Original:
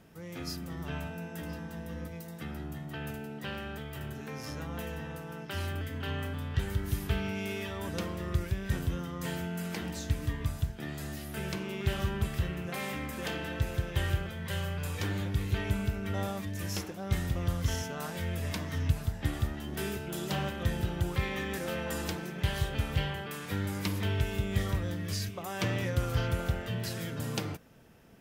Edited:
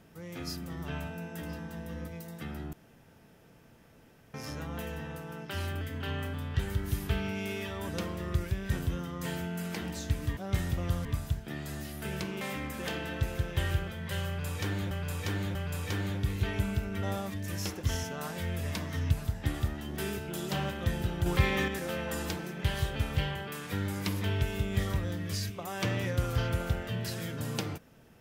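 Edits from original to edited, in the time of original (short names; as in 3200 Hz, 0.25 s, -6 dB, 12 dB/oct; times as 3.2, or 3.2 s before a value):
2.73–4.34 room tone
11.73–12.8 cut
14.66–15.3 loop, 3 plays
16.95–17.63 move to 10.37
21.05–21.47 gain +5.5 dB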